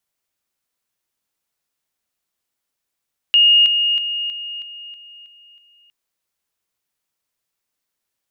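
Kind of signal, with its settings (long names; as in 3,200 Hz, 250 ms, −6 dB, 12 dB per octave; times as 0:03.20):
level staircase 2,850 Hz −8.5 dBFS, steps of −6 dB, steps 8, 0.32 s 0.00 s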